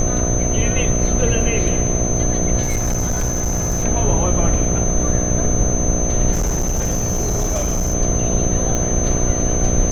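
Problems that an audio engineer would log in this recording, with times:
buzz 60 Hz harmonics 12 -22 dBFS
whine 6.2 kHz -22 dBFS
2.62–3.85 s: clipped -15.5 dBFS
6.32–7.95 s: clipped -15.5 dBFS
8.75 s: pop -8 dBFS

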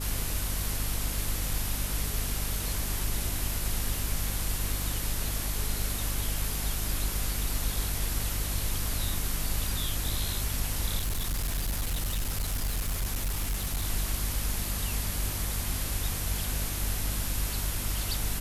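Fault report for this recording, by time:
hum 50 Hz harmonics 5 -34 dBFS
10.98–13.85 s: clipped -26 dBFS

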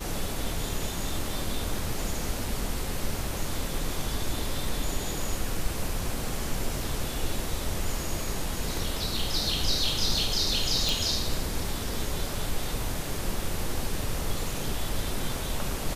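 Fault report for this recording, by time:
10.89 s: pop

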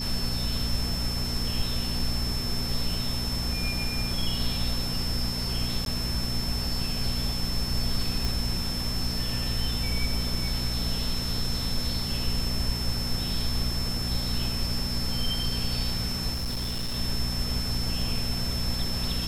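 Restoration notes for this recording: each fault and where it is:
hum 60 Hz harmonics 4 -33 dBFS
whine 5.3 kHz -32 dBFS
5.85–5.86 s: dropout 12 ms
8.25 s: pop
16.33–16.97 s: clipped -26.5 dBFS

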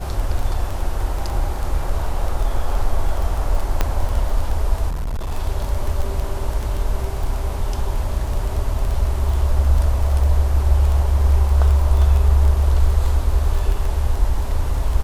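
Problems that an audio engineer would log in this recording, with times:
crackle 10 per s -21 dBFS
3.81 s: pop -4 dBFS
4.89–5.32 s: clipped -20.5 dBFS

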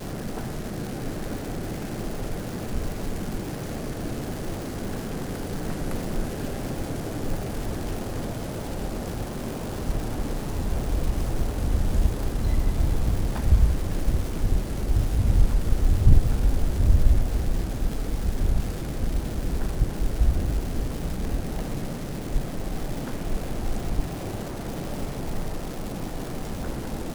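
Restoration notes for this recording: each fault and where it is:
crackle 510 per s -31 dBFS

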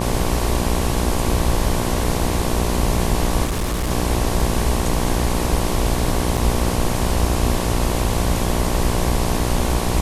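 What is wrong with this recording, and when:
buzz 60 Hz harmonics 19 -23 dBFS
3.44–3.91 s: clipped -18 dBFS
6.37 s: dropout 4.9 ms

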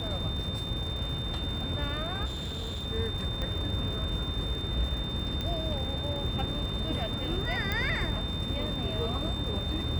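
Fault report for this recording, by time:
crackle 230 per s -39 dBFS
whine 3.6 kHz -36 dBFS
2.25–2.86 s: clipped -31.5 dBFS
3.42 s: pop -21 dBFS
5.41 s: pop -20 dBFS
7.72 s: pop -16 dBFS

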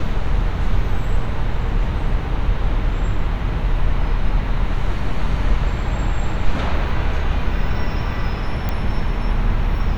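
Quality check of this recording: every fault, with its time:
8.69 s: pop -10 dBFS

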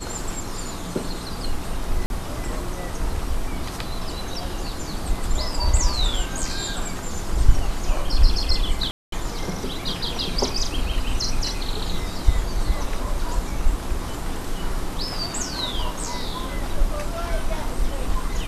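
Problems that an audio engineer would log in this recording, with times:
2.06–2.10 s: dropout 41 ms
8.91–9.12 s: dropout 213 ms

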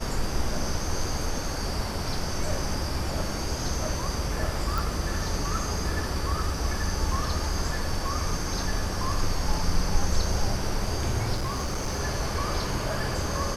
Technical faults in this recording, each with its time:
4.78 s: pop
11.34–12.01 s: clipped -24.5 dBFS

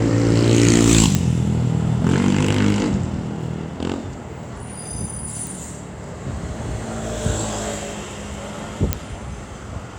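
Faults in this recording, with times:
1.15 s: pop -3 dBFS
5.47 s: pop
8.93 s: pop -2 dBFS

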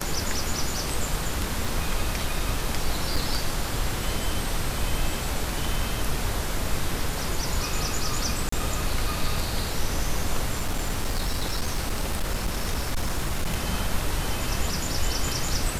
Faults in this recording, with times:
1.65 s: dropout 3.1 ms
3.16 s: dropout 4.9 ms
8.49–8.52 s: dropout 34 ms
10.52–13.55 s: clipped -21 dBFS

